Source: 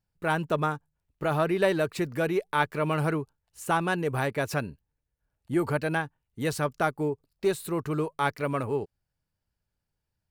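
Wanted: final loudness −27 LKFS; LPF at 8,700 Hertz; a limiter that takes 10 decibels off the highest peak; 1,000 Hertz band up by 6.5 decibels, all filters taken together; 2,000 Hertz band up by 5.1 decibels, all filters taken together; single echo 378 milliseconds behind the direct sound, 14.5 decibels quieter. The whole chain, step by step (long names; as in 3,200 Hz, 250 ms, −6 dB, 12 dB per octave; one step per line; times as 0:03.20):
low-pass filter 8,700 Hz
parametric band 1,000 Hz +7.5 dB
parametric band 2,000 Hz +3.5 dB
brickwall limiter −15 dBFS
single-tap delay 378 ms −14.5 dB
level +1 dB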